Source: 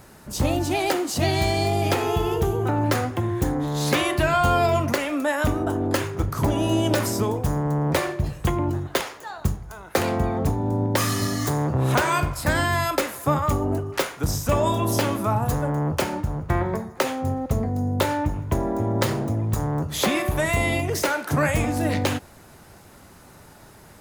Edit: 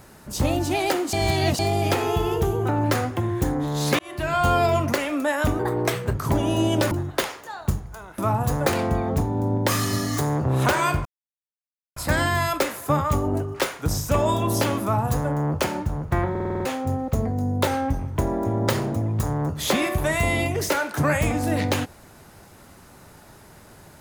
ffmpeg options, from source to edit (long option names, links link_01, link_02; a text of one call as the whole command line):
ffmpeg -i in.wav -filter_complex "[0:a]asplit=19[link_01][link_02][link_03][link_04][link_05][link_06][link_07][link_08][link_09][link_10][link_11][link_12][link_13][link_14][link_15][link_16][link_17][link_18][link_19];[link_01]atrim=end=1.132[link_20];[link_02]atrim=start=1.128:end=1.592,asetpts=PTS-STARTPTS,areverse[link_21];[link_03]atrim=start=1.588:end=3.99,asetpts=PTS-STARTPTS,afade=type=out:start_time=2.398:duration=0.004:curve=hsin[link_22];[link_04]atrim=start=3.99:end=5.594,asetpts=PTS-STARTPTS,afade=type=in:duration=0.48[link_23];[link_05]atrim=start=5.59:end=6.27,asetpts=PTS-STARTPTS,asetrate=54243,aresample=44100,atrim=end_sample=24380,asetpts=PTS-STARTPTS[link_24];[link_06]atrim=start=6.266:end=7.042[link_25];[link_07]atrim=start=8.678:end=9.952[link_26];[link_08]atrim=start=15.198:end=15.682[link_27];[link_09]atrim=start=9.948:end=12.34,asetpts=PTS-STARTPTS,afade=type=out:start_time=2.388:duration=0.004:curve=hsin,apad=pad_dur=0.91[link_28];[link_10]atrim=start=12.34:end=16.732,asetpts=PTS-STARTPTS,afade=type=in:duration=0.004:curve=hsin[link_29];[link_11]atrim=start=16.678:end=16.732[link_30];[link_12]atrim=start=16.678:end=16.732[link_31];[link_13]atrim=start=16.678:end=16.732[link_32];[link_14]atrim=start=16.678:end=16.732[link_33];[link_15]atrim=start=16.678:end=16.732[link_34];[link_16]atrim=start=16.678:end=16.732[link_35];[link_17]atrim=start=17.028:end=18.054[link_36];[link_18]atrim=start=18.05:end=18.49,asetpts=PTS-STARTPTS,asetrate=40131,aresample=44100,atrim=end_sample=21323,asetpts=PTS-STARTPTS[link_37];[link_19]atrim=start=18.486[link_38];[link_20][link_21]acrossfade=duration=0.004:curve1=hsin:curve2=hsin[link_39];[link_22][link_23]concat=n=2:v=0:a=1[link_40];[link_39][link_40]acrossfade=duration=0.004:curve1=hsin:curve2=hsin[link_41];[link_41][link_24]acrossfade=duration=0.004:curve1=hsin:curve2=hsin[link_42];[link_42][link_25]acrossfade=duration=0.004:curve1=hsin:curve2=hsin[link_43];[link_43][link_26]acrossfade=duration=0.004:curve1=hsin:curve2=hsin[link_44];[link_44][link_27]acrossfade=duration=0.004:curve1=hsin:curve2=hsin[link_45];[link_28][link_29]concat=n=2:v=0:a=1[link_46];[link_45][link_46]acrossfade=duration=0.004:curve1=hsin:curve2=hsin[link_47];[link_47][link_30]acrossfade=duration=0.004:curve1=hsin:curve2=hsin[link_48];[link_48][link_31]acrossfade=duration=0.004:curve1=hsin:curve2=hsin[link_49];[link_49][link_32]acrossfade=duration=0.004:curve1=hsin:curve2=hsin[link_50];[link_50][link_33]acrossfade=duration=0.004:curve1=hsin:curve2=hsin[link_51];[link_51][link_34]acrossfade=duration=0.004:curve1=hsin:curve2=hsin[link_52];[link_52][link_35]acrossfade=duration=0.004:curve1=hsin:curve2=hsin[link_53];[link_53][link_36]acrossfade=duration=0.004:curve1=hsin:curve2=hsin[link_54];[link_54][link_37]acrossfade=duration=0.004:curve1=hsin:curve2=hsin[link_55];[link_55][link_38]acrossfade=duration=0.004:curve1=hsin:curve2=hsin" out.wav